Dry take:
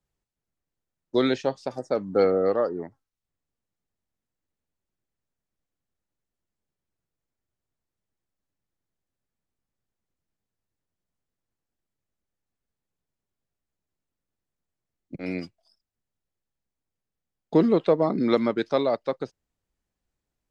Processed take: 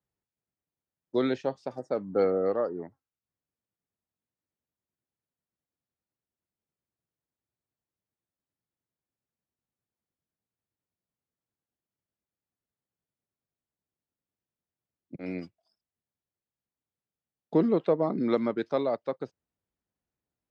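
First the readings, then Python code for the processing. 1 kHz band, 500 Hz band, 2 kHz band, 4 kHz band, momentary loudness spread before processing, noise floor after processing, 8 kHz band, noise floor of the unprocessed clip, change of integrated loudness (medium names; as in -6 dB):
-5.0 dB, -4.0 dB, -6.5 dB, -9.5 dB, 14 LU, under -85 dBFS, no reading, under -85 dBFS, -4.5 dB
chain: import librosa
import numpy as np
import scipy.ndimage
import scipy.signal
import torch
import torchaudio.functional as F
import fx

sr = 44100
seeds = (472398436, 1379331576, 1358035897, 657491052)

y = scipy.signal.sosfilt(scipy.signal.butter(2, 81.0, 'highpass', fs=sr, output='sos'), x)
y = fx.high_shelf(y, sr, hz=3100.0, db=-9.5)
y = y * 10.0 ** (-4.0 / 20.0)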